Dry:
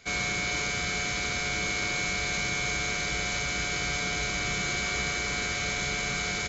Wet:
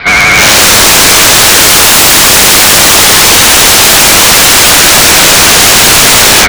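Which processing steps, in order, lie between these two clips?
steep low-pass 4500 Hz 48 dB/oct; band shelf 1300 Hz +8.5 dB; AGC gain up to 15.5 dB; wrapped overs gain 13.5 dB; vibrato 12 Hz 62 cents; hard clip -25.5 dBFS, distortion -7 dB; maximiser +31.5 dB; gain -1 dB

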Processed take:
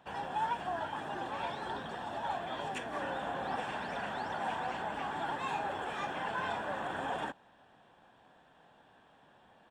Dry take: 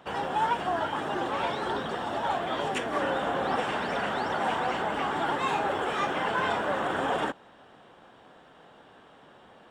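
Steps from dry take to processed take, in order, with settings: comb 1.2 ms, depth 33%; gain -9 dB

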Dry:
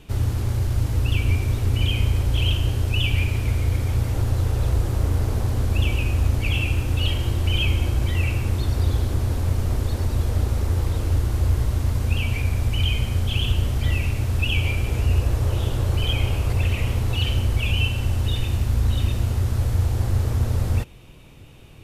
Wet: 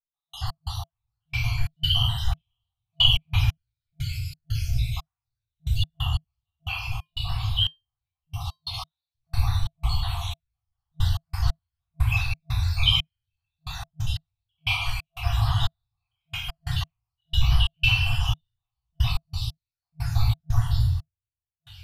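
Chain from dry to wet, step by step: random spectral dropouts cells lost 80%; ten-band EQ 125 Hz +8 dB, 250 Hz -9 dB, 500 Hz -4 dB, 1000 Hz +4 dB, 2000 Hz -5 dB, 4000 Hz +12 dB, 8000 Hz -7 dB; thin delay 0.51 s, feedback 65%, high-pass 5200 Hz, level -14.5 dB; shoebox room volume 530 m³, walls mixed, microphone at 3.5 m; step gate "..x.x...xx.xxx.." 90 bpm -60 dB; resonant low shelf 170 Hz -7.5 dB, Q 3; FFT band-reject 160–670 Hz; 6.63–8.74 resonator 350 Hz, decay 0.21 s, harmonics odd, mix 40%

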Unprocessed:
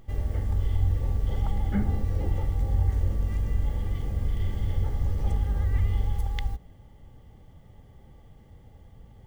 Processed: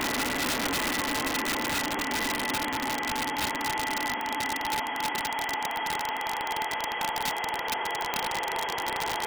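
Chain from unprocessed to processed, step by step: sine-wave speech; Paulstretch 42×, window 0.50 s, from 3.55; wrapped overs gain 22 dB

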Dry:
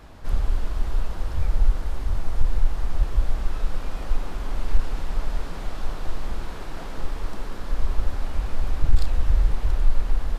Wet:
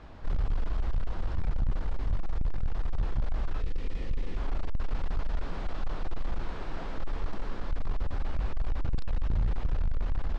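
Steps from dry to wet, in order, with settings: hard clip -20.5 dBFS, distortion -6 dB; air absorption 130 m; narrowing echo 0.145 s, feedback 44%, level -23 dB; spectral gain 3.61–4.37, 550–1700 Hz -10 dB; gain -2 dB

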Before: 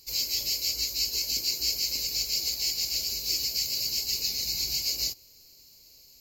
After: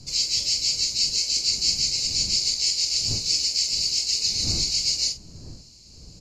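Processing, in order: wind noise 140 Hz -40 dBFS; elliptic low-pass 9500 Hz, stop band 50 dB; high shelf 3300 Hz +8 dB; doubler 44 ms -9 dB

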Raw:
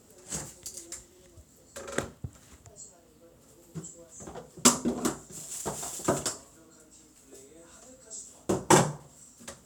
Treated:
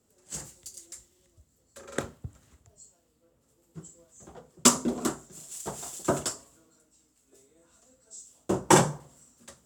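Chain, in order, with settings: three-band expander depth 40%; gain -2.5 dB

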